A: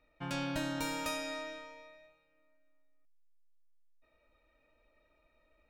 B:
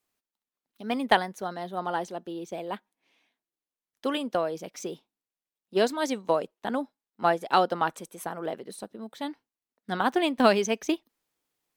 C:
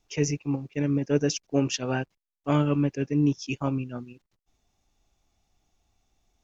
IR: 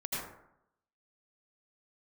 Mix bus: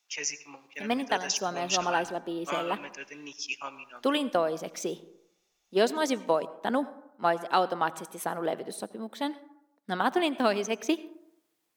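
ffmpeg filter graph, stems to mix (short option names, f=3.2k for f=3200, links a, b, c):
-filter_complex "[0:a]lowpass=1.3k,adelay=1250,volume=-17.5dB[a];[1:a]lowshelf=f=85:g=-11.5,dynaudnorm=f=120:g=3:m=13dB,volume=-10.5dB,asplit=2[b][c];[c]volume=-19.5dB[d];[2:a]highpass=1.3k,volume=2dB,asplit=2[e][f];[f]volume=-17.5dB[g];[3:a]atrim=start_sample=2205[h];[d][g]amix=inputs=2:normalize=0[i];[i][h]afir=irnorm=-1:irlink=0[j];[a][b][e][j]amix=inputs=4:normalize=0"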